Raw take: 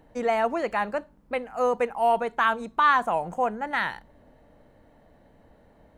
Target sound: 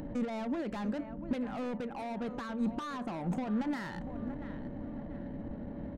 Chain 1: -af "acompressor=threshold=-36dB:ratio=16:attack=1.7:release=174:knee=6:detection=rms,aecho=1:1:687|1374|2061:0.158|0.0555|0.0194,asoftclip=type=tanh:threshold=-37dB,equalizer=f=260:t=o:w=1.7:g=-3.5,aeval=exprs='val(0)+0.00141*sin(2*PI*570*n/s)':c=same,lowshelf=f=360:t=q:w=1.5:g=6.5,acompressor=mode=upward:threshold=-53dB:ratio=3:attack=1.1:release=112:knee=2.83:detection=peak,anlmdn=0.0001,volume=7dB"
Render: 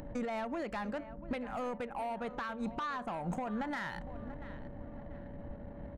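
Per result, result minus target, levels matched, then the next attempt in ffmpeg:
soft clip: distortion -8 dB; 250 Hz band -3.5 dB
-af "acompressor=threshold=-36dB:ratio=16:attack=1.7:release=174:knee=6:detection=rms,aecho=1:1:687|1374|2061:0.158|0.0555|0.0194,asoftclip=type=tanh:threshold=-45dB,equalizer=f=260:t=o:w=1.7:g=-3.5,aeval=exprs='val(0)+0.00141*sin(2*PI*570*n/s)':c=same,lowshelf=f=360:t=q:w=1.5:g=6.5,acompressor=mode=upward:threshold=-53dB:ratio=3:attack=1.1:release=112:knee=2.83:detection=peak,anlmdn=0.0001,volume=7dB"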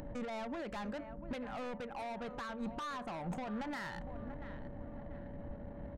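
250 Hz band -3.0 dB
-af "acompressor=threshold=-36dB:ratio=16:attack=1.7:release=174:knee=6:detection=rms,aecho=1:1:687|1374|2061:0.158|0.0555|0.0194,asoftclip=type=tanh:threshold=-45dB,equalizer=f=260:t=o:w=1.7:g=6,aeval=exprs='val(0)+0.00141*sin(2*PI*570*n/s)':c=same,lowshelf=f=360:t=q:w=1.5:g=6.5,acompressor=mode=upward:threshold=-53dB:ratio=3:attack=1.1:release=112:knee=2.83:detection=peak,anlmdn=0.0001,volume=7dB"

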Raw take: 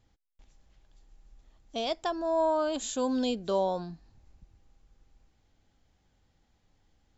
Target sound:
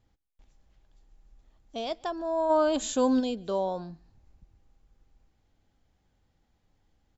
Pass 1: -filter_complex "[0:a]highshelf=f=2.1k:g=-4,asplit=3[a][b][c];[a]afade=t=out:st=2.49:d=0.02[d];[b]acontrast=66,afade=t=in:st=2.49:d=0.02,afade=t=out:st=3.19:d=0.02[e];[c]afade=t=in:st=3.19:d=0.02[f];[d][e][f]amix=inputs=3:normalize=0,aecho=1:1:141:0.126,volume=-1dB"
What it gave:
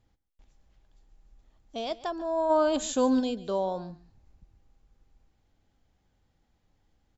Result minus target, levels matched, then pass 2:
echo-to-direct +9 dB
-filter_complex "[0:a]highshelf=f=2.1k:g=-4,asplit=3[a][b][c];[a]afade=t=out:st=2.49:d=0.02[d];[b]acontrast=66,afade=t=in:st=2.49:d=0.02,afade=t=out:st=3.19:d=0.02[e];[c]afade=t=in:st=3.19:d=0.02[f];[d][e][f]amix=inputs=3:normalize=0,aecho=1:1:141:0.0447,volume=-1dB"

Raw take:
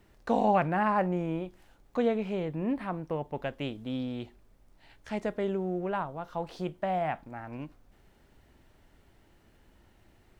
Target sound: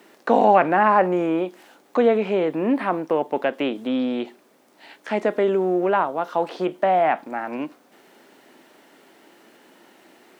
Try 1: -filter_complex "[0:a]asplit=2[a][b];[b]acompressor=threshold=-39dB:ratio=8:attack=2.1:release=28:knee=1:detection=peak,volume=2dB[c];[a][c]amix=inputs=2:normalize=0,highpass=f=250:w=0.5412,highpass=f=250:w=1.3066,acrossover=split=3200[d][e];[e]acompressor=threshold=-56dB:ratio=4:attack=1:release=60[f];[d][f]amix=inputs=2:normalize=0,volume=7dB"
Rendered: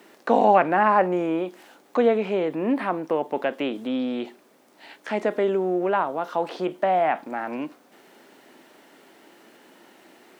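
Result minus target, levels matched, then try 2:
compressor: peak gain reduction +7.5 dB
-filter_complex "[0:a]asplit=2[a][b];[b]acompressor=threshold=-30.5dB:ratio=8:attack=2.1:release=28:knee=1:detection=peak,volume=2dB[c];[a][c]amix=inputs=2:normalize=0,highpass=f=250:w=0.5412,highpass=f=250:w=1.3066,acrossover=split=3200[d][e];[e]acompressor=threshold=-56dB:ratio=4:attack=1:release=60[f];[d][f]amix=inputs=2:normalize=0,volume=7dB"

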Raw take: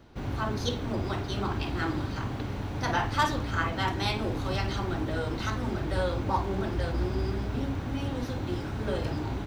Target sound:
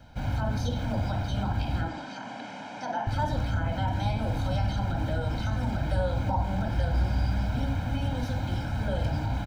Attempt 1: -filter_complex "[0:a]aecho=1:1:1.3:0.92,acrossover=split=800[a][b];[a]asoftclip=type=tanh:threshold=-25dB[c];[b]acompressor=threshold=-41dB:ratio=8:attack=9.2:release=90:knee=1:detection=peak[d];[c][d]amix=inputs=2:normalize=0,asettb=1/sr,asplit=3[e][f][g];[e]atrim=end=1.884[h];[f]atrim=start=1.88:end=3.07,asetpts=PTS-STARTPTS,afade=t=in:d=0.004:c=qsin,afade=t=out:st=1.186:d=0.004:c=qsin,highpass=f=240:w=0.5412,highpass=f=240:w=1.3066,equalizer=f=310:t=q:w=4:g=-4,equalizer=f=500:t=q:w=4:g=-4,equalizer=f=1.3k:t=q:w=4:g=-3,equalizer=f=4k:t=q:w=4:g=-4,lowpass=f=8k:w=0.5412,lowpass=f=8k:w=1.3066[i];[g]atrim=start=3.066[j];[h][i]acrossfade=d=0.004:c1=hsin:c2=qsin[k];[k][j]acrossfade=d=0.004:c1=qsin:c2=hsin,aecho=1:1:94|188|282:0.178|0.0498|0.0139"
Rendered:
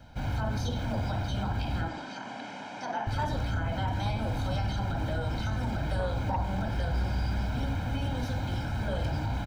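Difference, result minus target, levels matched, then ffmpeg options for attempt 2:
soft clip: distortion +16 dB
-filter_complex "[0:a]aecho=1:1:1.3:0.92,acrossover=split=800[a][b];[a]asoftclip=type=tanh:threshold=-14dB[c];[b]acompressor=threshold=-41dB:ratio=8:attack=9.2:release=90:knee=1:detection=peak[d];[c][d]amix=inputs=2:normalize=0,asettb=1/sr,asplit=3[e][f][g];[e]atrim=end=1.884[h];[f]atrim=start=1.88:end=3.07,asetpts=PTS-STARTPTS,afade=t=in:d=0.004:c=qsin,afade=t=out:st=1.186:d=0.004:c=qsin,highpass=f=240:w=0.5412,highpass=f=240:w=1.3066,equalizer=f=310:t=q:w=4:g=-4,equalizer=f=500:t=q:w=4:g=-4,equalizer=f=1.3k:t=q:w=4:g=-3,equalizer=f=4k:t=q:w=4:g=-4,lowpass=f=8k:w=0.5412,lowpass=f=8k:w=1.3066[i];[g]atrim=start=3.066[j];[h][i]acrossfade=d=0.004:c1=hsin:c2=qsin[k];[k][j]acrossfade=d=0.004:c1=qsin:c2=hsin,aecho=1:1:94|188|282:0.178|0.0498|0.0139"

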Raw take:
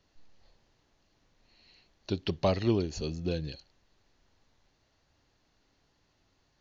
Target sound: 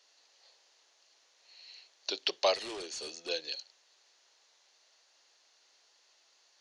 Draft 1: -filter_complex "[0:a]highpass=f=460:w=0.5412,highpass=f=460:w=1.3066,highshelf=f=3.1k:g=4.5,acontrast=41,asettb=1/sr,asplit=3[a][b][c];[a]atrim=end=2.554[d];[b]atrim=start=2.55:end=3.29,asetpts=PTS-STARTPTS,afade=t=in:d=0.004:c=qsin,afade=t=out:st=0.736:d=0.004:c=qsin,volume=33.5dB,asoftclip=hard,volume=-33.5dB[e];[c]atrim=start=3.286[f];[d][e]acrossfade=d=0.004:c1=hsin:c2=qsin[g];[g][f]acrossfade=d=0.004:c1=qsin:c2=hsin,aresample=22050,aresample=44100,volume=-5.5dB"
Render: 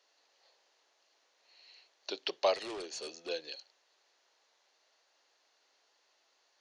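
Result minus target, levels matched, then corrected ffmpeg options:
4000 Hz band -3.0 dB
-filter_complex "[0:a]highpass=f=460:w=0.5412,highpass=f=460:w=1.3066,highshelf=f=3.1k:g=15,acontrast=41,asettb=1/sr,asplit=3[a][b][c];[a]atrim=end=2.554[d];[b]atrim=start=2.55:end=3.29,asetpts=PTS-STARTPTS,afade=t=in:d=0.004:c=qsin,afade=t=out:st=0.736:d=0.004:c=qsin,volume=33.5dB,asoftclip=hard,volume=-33.5dB[e];[c]atrim=start=3.286[f];[d][e]acrossfade=d=0.004:c1=hsin:c2=qsin[g];[g][f]acrossfade=d=0.004:c1=qsin:c2=hsin,aresample=22050,aresample=44100,volume=-5.5dB"

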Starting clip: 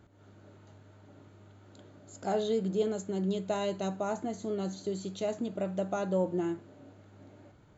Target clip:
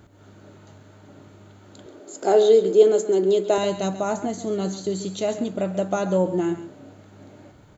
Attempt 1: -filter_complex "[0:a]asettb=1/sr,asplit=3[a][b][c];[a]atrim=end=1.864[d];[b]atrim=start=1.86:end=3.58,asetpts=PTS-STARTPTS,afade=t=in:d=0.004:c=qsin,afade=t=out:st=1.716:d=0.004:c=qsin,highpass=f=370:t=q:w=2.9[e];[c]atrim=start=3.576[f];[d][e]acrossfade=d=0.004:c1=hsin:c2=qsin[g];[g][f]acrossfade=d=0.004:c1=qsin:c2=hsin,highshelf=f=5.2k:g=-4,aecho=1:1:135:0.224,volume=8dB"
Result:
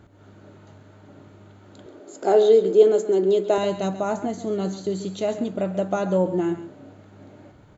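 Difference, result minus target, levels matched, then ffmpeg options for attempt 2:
8000 Hz band -6.0 dB
-filter_complex "[0:a]asettb=1/sr,asplit=3[a][b][c];[a]atrim=end=1.864[d];[b]atrim=start=1.86:end=3.58,asetpts=PTS-STARTPTS,afade=t=in:d=0.004:c=qsin,afade=t=out:st=1.716:d=0.004:c=qsin,highpass=f=370:t=q:w=2.9[e];[c]atrim=start=3.576[f];[d][e]acrossfade=d=0.004:c1=hsin:c2=qsin[g];[g][f]acrossfade=d=0.004:c1=qsin:c2=hsin,highshelf=f=5.2k:g=5.5,aecho=1:1:135:0.224,volume=8dB"

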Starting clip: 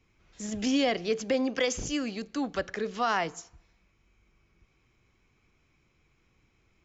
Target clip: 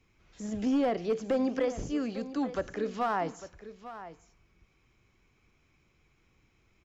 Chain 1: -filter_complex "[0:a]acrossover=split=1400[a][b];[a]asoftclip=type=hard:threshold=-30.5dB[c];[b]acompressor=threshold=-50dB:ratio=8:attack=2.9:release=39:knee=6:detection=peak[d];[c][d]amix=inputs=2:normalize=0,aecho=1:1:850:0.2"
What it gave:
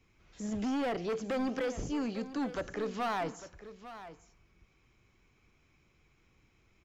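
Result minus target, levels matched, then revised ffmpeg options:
hard clip: distortion +12 dB
-filter_complex "[0:a]acrossover=split=1400[a][b];[a]asoftclip=type=hard:threshold=-22.5dB[c];[b]acompressor=threshold=-50dB:ratio=8:attack=2.9:release=39:knee=6:detection=peak[d];[c][d]amix=inputs=2:normalize=0,aecho=1:1:850:0.2"

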